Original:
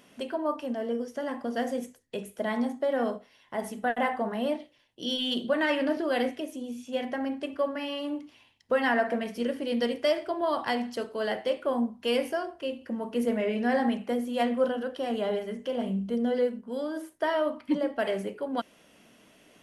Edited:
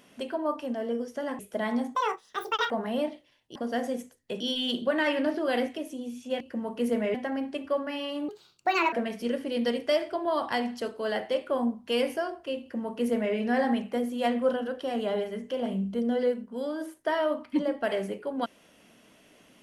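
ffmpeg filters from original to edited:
-filter_complex "[0:a]asplit=10[a][b][c][d][e][f][g][h][i][j];[a]atrim=end=1.392[k];[b]atrim=start=2.238:end=2.804[l];[c]atrim=start=2.8:end=4.18,asetpts=PTS-STARTPTS,asetrate=80703,aresample=44100[m];[d]atrim=start=4.176:end=5.032[n];[e]atrim=start=1.388:end=2.242[o];[f]atrim=start=5.028:end=7.032[p];[g]atrim=start=12.758:end=13.502[q];[h]atrim=start=7.028:end=8.174[r];[i]atrim=start=8.17:end=9.08,asetpts=PTS-STARTPTS,asetrate=62622,aresample=44100,atrim=end_sample=28261,asetpts=PTS-STARTPTS[s];[j]atrim=start=9.076[t];[k][l]acrossfade=d=0.004:c1=hsin:c2=hsin[u];[u][m]acrossfade=d=0.004:c1=hsin:c2=hsin[v];[v][n]acrossfade=d=0.004:c1=hsin:c2=hsin[w];[w][o]acrossfade=d=0.004:c1=hsin:c2=hsin[x];[x][p]acrossfade=d=0.004:c1=hsin:c2=hsin[y];[y][q]acrossfade=d=0.004:c1=hsin:c2=hsin[z];[z][r]acrossfade=d=0.004:c1=hsin:c2=hsin[aa];[aa][s]acrossfade=d=0.004:c1=hsin:c2=hsin[ab];[ab][t]acrossfade=d=0.004:c1=hsin:c2=hsin"

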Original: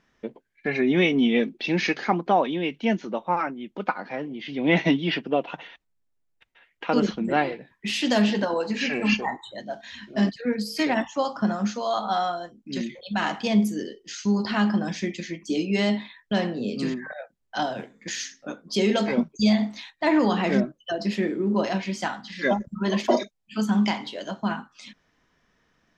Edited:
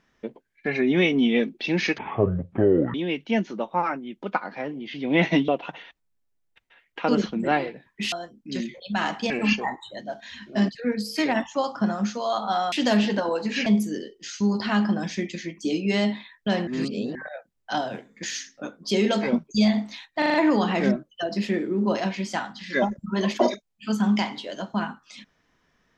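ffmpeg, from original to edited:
-filter_complex "[0:a]asplit=14[a][b][c][d][e][f][g][h][i][j][k][l][m][n];[a]atrim=end=1.984[o];[b]atrim=start=1.98:end=2.48,asetpts=PTS-STARTPTS,asetrate=22932,aresample=44100[p];[c]atrim=start=2.476:end=5.022[q];[d]atrim=start=5.328:end=7.972[r];[e]atrim=start=12.328:end=13.512[s];[f]atrim=start=8.908:end=12.332[t];[g]atrim=start=7.968:end=8.912[u];[h]atrim=start=13.508:end=16.522[v];[i]atrim=start=16.518:end=17.002,asetpts=PTS-STARTPTS,areverse[w];[j]atrim=start=16.998:end=20.072[x];[k]atrim=start=20.028:end=20.072[y];[l]atrim=start=20.028:end=20.072[z];[m]atrim=start=20.028:end=20.072[aa];[n]atrim=start=20.028[ab];[o][p]acrossfade=d=0.004:c1=hsin:c2=hsin[ac];[ac][q]acrossfade=d=0.004:c1=hsin:c2=hsin[ad];[ad][r]acrossfade=d=0.004:c1=hsin:c2=hsin[ae];[ae][s]acrossfade=d=0.004:c1=hsin:c2=hsin[af];[af][t]acrossfade=d=0.004:c1=hsin:c2=hsin[ag];[ag][u]acrossfade=d=0.004:c1=hsin:c2=hsin[ah];[ah][v]acrossfade=d=0.004:c1=hsin:c2=hsin[ai];[ai][w]acrossfade=d=0.004:c1=hsin:c2=hsin[aj];[aj][x]acrossfade=d=0.004:c1=hsin:c2=hsin[ak];[ak][y]acrossfade=d=0.004:c1=hsin:c2=hsin[al];[al][z]acrossfade=d=0.004:c1=hsin:c2=hsin[am];[am][aa]acrossfade=d=0.004:c1=hsin:c2=hsin[an];[an][ab]acrossfade=d=0.004:c1=hsin:c2=hsin"

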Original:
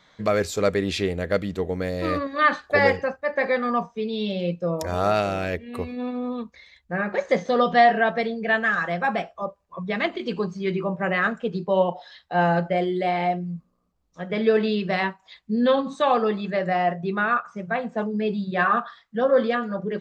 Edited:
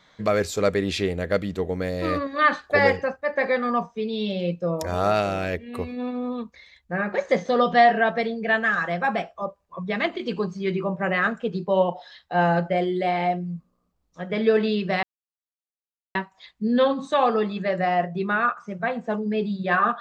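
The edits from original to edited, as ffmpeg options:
-filter_complex "[0:a]asplit=2[a][b];[a]atrim=end=15.03,asetpts=PTS-STARTPTS,afade=t=out:st=15.026:d=0.004:c=hsin,apad=pad_dur=1.12[c];[b]atrim=start=15.03,asetpts=PTS-STARTPTS,afade=t=in:d=0.004:c=hsin[d];[c][d]concat=n=2:v=0:a=1"

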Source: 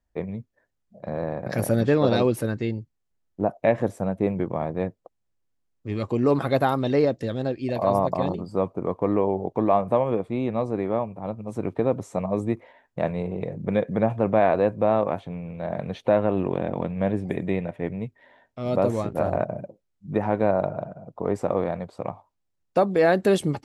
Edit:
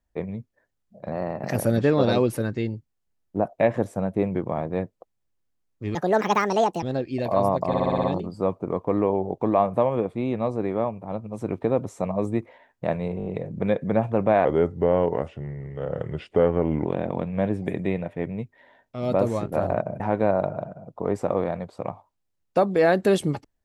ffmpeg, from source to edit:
-filter_complex "[0:a]asplit=18[a][b][c][d][e][f][g][h][i][j][k][l][m][n][o][p][q][r];[a]atrim=end=1.124[s];[b]atrim=start=1.12:end=1.61,asetpts=PTS-STARTPTS,asetrate=48069,aresample=44100[t];[c]atrim=start=1.606:end=5.994[u];[d]atrim=start=5.99:end=7.33,asetpts=PTS-STARTPTS,asetrate=67473,aresample=44100[v];[e]atrim=start=7.326:end=8.242[w];[f]atrim=start=8.178:end=8.242[x];[g]atrim=start=8.178:end=8.242[y];[h]atrim=start=8.178:end=8.242[z];[i]atrim=start=8.178:end=8.242[aa];[j]atrim=start=8.178:end=8.242[ab];[k]atrim=start=8.178:end=13.342[ac];[l]atrim=start=13.318:end=13.342[ad];[m]atrim=start=13.318:end=13.342[ae];[n]atrim=start=13.318:end=13.342[af];[o]atrim=start=13.318:end=14.514[ag];[p]atrim=start=14.51:end=16.49,asetpts=PTS-STARTPTS,asetrate=36162,aresample=44100,atrim=end_sample=106485,asetpts=PTS-STARTPTS[ah];[q]atrim=start=16.486:end=19.632[ai];[r]atrim=start=20.198[aj];[s][t]acrossfade=d=0.004:c1=hsin:c2=hsin[ak];[ak][u]acrossfade=d=0.004:c1=hsin:c2=hsin[al];[al][v]acrossfade=d=0.004:c1=hsin:c2=hsin[am];[am][w]acrossfade=d=0.004:c1=hsin:c2=hsin[an];[an][x]acrossfade=d=0.004:c1=hsin:c2=hsin[ao];[ao][y]acrossfade=d=0.004:c1=hsin:c2=hsin[ap];[ap][z]acrossfade=d=0.004:c1=hsin:c2=hsin[aq];[aq][aa]acrossfade=d=0.004:c1=hsin:c2=hsin[ar];[ar][ab]acrossfade=d=0.004:c1=hsin:c2=hsin[as];[as][ac]acrossfade=d=0.004:c1=hsin:c2=hsin[at];[at][ad]acrossfade=d=0.004:c1=hsin:c2=hsin[au];[au][ae]acrossfade=d=0.004:c1=hsin:c2=hsin[av];[av][af]acrossfade=d=0.004:c1=hsin:c2=hsin[aw];[aw][ag]acrossfade=d=0.004:c1=hsin:c2=hsin[ax];[ax][ah]acrossfade=d=0.004:c1=hsin:c2=hsin[ay];[ay][ai]acrossfade=d=0.004:c1=hsin:c2=hsin[az];[az][aj]acrossfade=d=0.004:c1=hsin:c2=hsin"

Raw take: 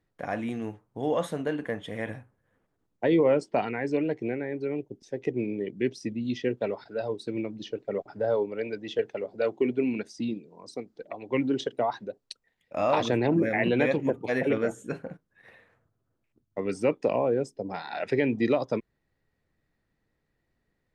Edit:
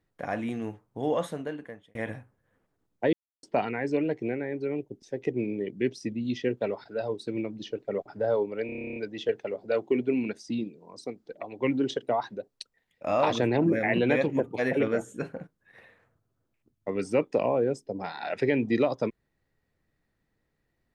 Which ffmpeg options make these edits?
-filter_complex "[0:a]asplit=14[a][b][c][d][e][f][g][h][i][j][k][l][m][n];[a]atrim=end=1.95,asetpts=PTS-STARTPTS,afade=t=out:st=1.1:d=0.85[o];[b]atrim=start=1.95:end=3.13,asetpts=PTS-STARTPTS,afade=t=in:d=0.004:c=hsin,afade=t=out:st=1.176:d=0.004:c=hsin[p];[c]atrim=start=3.13:end=3.43,asetpts=PTS-STARTPTS,volume=0[q];[d]atrim=start=3.43:end=8.692,asetpts=PTS-STARTPTS,afade=t=in:d=0.004:c=hsin[r];[e]atrim=start=8.658:end=8.692[s];[f]atrim=start=8.658:end=8.692[t];[g]atrim=start=8.658:end=8.692[u];[h]atrim=start=8.658:end=8.692[v];[i]atrim=start=8.658:end=8.692[w];[j]atrim=start=8.658:end=8.692[x];[k]atrim=start=8.658:end=8.692[y];[l]atrim=start=8.658:end=8.692[z];[m]atrim=start=8.658:end=8.692[aa];[n]atrim=start=8.658[ab];[o][p][q][r]concat=n=4:v=0:a=1[ac];[ac][s]acrossfade=d=0.004:c1=hsin:c2=hsin[ad];[ad][t]acrossfade=d=0.004:c1=hsin:c2=hsin[ae];[ae][u]acrossfade=d=0.004:c1=hsin:c2=hsin[af];[af][v]acrossfade=d=0.004:c1=hsin:c2=hsin[ag];[ag][w]acrossfade=d=0.004:c1=hsin:c2=hsin[ah];[ah][x]acrossfade=d=0.004:c1=hsin:c2=hsin[ai];[ai][y]acrossfade=d=0.004:c1=hsin:c2=hsin[aj];[aj][z]acrossfade=d=0.004:c1=hsin:c2=hsin[ak];[ak][aa]acrossfade=d=0.004:c1=hsin:c2=hsin[al];[al][ab]acrossfade=d=0.004:c1=hsin:c2=hsin"

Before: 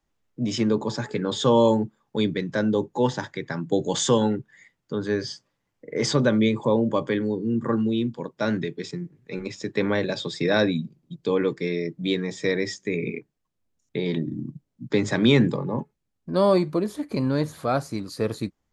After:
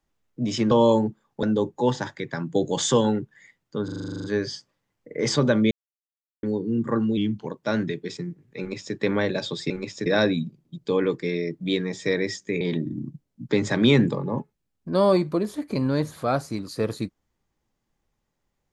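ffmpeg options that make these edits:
-filter_complex "[0:a]asplit=20[a][b][c][d][e][f][g][h][i][j][k][l][m][n][o][p][q][r][s][t];[a]atrim=end=0.712[u];[b]atrim=start=1.468:end=2.192[v];[c]atrim=start=2.598:end=5.052[w];[d]atrim=start=5.008:end=5.052[x];[e]atrim=start=5.008:end=5.052[y];[f]atrim=start=5.008:end=5.052[z];[g]atrim=start=5.008:end=5.052[aa];[h]atrim=start=5.008:end=5.052[ab];[i]atrim=start=5.008:end=5.052[ac];[j]atrim=start=5.008:end=5.052[ad];[k]atrim=start=5.008:end=5.052[ae];[l]atrim=start=5.008:end=5.052[af];[m]atrim=start=5.008:end=6.48,asetpts=PTS-STARTPTS,afade=t=out:st=1.468:d=0.004:c=hsin[ag];[n]atrim=start=6.48:end=7.2,asetpts=PTS-STARTPTS,volume=0[ah];[o]atrim=start=7.2:end=7.944,asetpts=PTS-STARTPTS,afade=t=in:d=0.004:c=hsin[ai];[p]atrim=start=7.94:end=8.21,asetpts=PTS-STARTPTS,asetrate=39690,aresample=44100[aj];[q]atrim=start=8.206:end=10.442[ak];[r]atrim=start=9.328:end=9.692[al];[s]atrim=start=10.438:end=12.992[am];[t]atrim=start=14.018[an];[u][v]acrossfade=d=0.004:c1=hsin:c2=hsin[ao];[ao][w]acrossfade=d=0.004:c1=hsin:c2=hsin[ap];[ap][x]acrossfade=d=0.004:c1=hsin:c2=hsin[aq];[aq][y]acrossfade=d=0.004:c1=hsin:c2=hsin[ar];[ar][z]acrossfade=d=0.004:c1=hsin:c2=hsin[as];[as][aa]acrossfade=d=0.004:c1=hsin:c2=hsin[at];[at][ab]acrossfade=d=0.004:c1=hsin:c2=hsin[au];[au][ac]acrossfade=d=0.004:c1=hsin:c2=hsin[av];[av][ad]acrossfade=d=0.004:c1=hsin:c2=hsin[aw];[aw][ae]acrossfade=d=0.004:c1=hsin:c2=hsin[ax];[ax][af]acrossfade=d=0.004:c1=hsin:c2=hsin[ay];[ag][ah][ai]concat=n=3:v=0:a=1[az];[ay][az]acrossfade=d=0.004:c1=hsin:c2=hsin[ba];[ba][aj]acrossfade=d=0.004:c1=hsin:c2=hsin[bb];[bb][ak]acrossfade=d=0.004:c1=hsin:c2=hsin[bc];[bc][al]acrossfade=d=0.004:c1=hsin:c2=hsin[bd];[bd][am]acrossfade=d=0.004:c1=hsin:c2=hsin[be];[be][an]acrossfade=d=0.004:c1=hsin:c2=hsin"

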